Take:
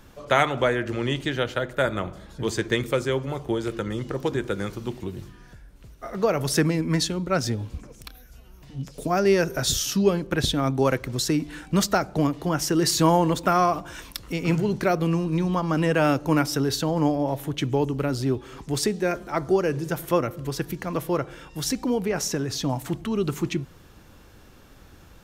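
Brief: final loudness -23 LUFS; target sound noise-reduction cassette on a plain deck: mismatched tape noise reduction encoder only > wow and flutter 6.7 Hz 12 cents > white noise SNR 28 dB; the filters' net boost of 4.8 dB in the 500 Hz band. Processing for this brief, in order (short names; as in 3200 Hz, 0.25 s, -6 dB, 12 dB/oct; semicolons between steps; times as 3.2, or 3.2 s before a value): bell 500 Hz +6 dB; mismatched tape noise reduction encoder only; wow and flutter 6.7 Hz 12 cents; white noise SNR 28 dB; gain -1 dB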